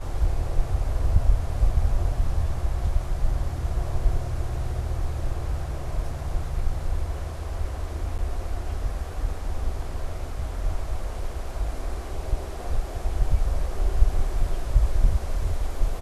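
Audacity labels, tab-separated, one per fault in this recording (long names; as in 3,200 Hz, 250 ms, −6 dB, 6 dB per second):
8.180000	8.190000	drop-out 8.5 ms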